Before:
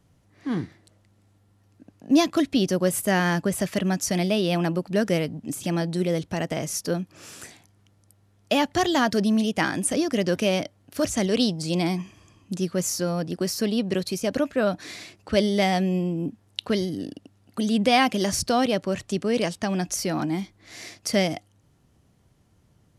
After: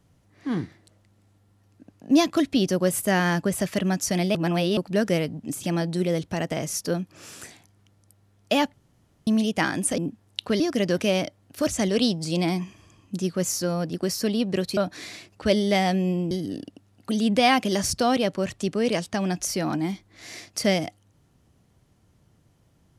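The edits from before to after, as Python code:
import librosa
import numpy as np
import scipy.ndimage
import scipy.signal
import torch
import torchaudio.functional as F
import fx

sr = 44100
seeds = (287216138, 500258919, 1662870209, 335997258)

y = fx.edit(x, sr, fx.reverse_span(start_s=4.35, length_s=0.42),
    fx.room_tone_fill(start_s=8.74, length_s=0.53),
    fx.cut(start_s=14.15, length_s=0.49),
    fx.move(start_s=16.18, length_s=0.62, to_s=9.98), tone=tone)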